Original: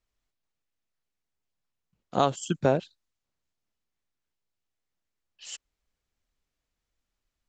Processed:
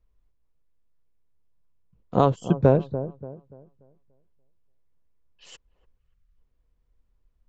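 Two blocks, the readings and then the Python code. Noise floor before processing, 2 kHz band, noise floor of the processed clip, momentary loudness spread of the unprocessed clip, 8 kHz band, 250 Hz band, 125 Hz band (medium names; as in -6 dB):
-85 dBFS, -2.5 dB, -70 dBFS, 16 LU, under -10 dB, +7.0 dB, +9.5 dB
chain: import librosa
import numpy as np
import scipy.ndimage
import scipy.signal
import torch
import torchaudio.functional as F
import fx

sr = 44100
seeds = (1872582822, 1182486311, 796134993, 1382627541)

p1 = fx.riaa(x, sr, side='playback')
p2 = fx.echo_wet_lowpass(p1, sr, ms=290, feedback_pct=32, hz=950.0, wet_db=-12.5)
p3 = fx.spec_box(p2, sr, start_s=5.98, length_s=0.4, low_hz=210.0, high_hz=1100.0, gain_db=-10)
p4 = fx.small_body(p3, sr, hz=(470.0, 1000.0), ring_ms=20, db=7)
p5 = fx.rider(p4, sr, range_db=10, speed_s=0.5)
p6 = p4 + F.gain(torch.from_numpy(p5), -0.5).numpy()
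y = F.gain(torch.from_numpy(p6), -6.5).numpy()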